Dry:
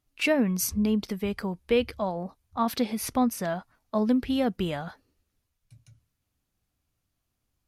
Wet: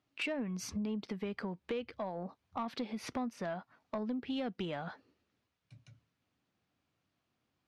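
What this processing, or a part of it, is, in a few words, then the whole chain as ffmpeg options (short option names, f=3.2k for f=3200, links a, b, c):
AM radio: -filter_complex "[0:a]highpass=160,lowpass=3.8k,acompressor=threshold=-38dB:ratio=5,asoftclip=type=tanh:threshold=-30.5dB,asettb=1/sr,asplit=3[a][b][c];[a]atrim=end=4.194[d];[b]atrim=start=4.19:end=4.66,asetpts=PTS-STARTPTS,afade=t=in:d=0.004:c=qsin,afade=t=out:st=0.466:d=0.004:c=qsin,adynamicequalizer=threshold=0.00141:dfrequency=2000:dqfactor=0.7:tfrequency=2000:tqfactor=0.7:attack=5:release=100:ratio=0.375:range=2.5:mode=boostabove:tftype=highshelf[e];[c]atrim=start=4.656[f];[d][e]acrossfade=d=0.004:c1=hsin:c2=qsin[g];[g][f]acrossfade=d=0.004:c1=qsin:c2=hsin,volume=3dB"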